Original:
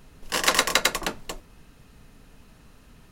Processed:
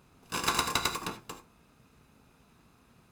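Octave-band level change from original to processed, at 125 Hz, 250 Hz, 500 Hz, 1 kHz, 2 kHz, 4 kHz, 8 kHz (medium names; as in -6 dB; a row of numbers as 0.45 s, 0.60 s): -0.5 dB, -4.5 dB, -10.0 dB, -4.5 dB, -10.0 dB, -8.0 dB, -9.0 dB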